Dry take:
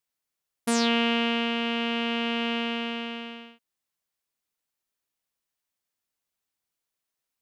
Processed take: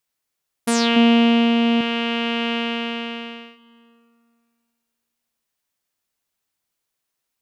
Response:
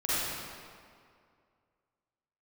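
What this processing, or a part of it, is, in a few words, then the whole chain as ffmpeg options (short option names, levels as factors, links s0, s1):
ducked reverb: -filter_complex "[0:a]asplit=3[s0][s1][s2];[1:a]atrim=start_sample=2205[s3];[s1][s3]afir=irnorm=-1:irlink=0[s4];[s2]apad=whole_len=327093[s5];[s4][s5]sidechaincompress=threshold=0.00708:ratio=8:attack=16:release=613,volume=0.0841[s6];[s0][s6]amix=inputs=2:normalize=0,asettb=1/sr,asplit=3[s7][s8][s9];[s7]atrim=end=0.964[s10];[s8]atrim=start=0.96:end=1.81,asetpts=PTS-STARTPTS,afade=t=in:d=0.004:c=qsin,afade=t=out:st=0.846:d=0.004:c=qsin,equalizer=f=250:t=o:w=0.67:g=9,equalizer=f=630:t=o:w=0.67:g=5,equalizer=f=1600:t=o:w=0.67:g=-4[s11];[s9]atrim=start=1.806[s12];[s10][s11]acrossfade=d=0.004:c1=hsin:c2=qsin[s13];[s13][s12]acrossfade=d=0.004:c1=qsin:c2=hsin,volume=1.78"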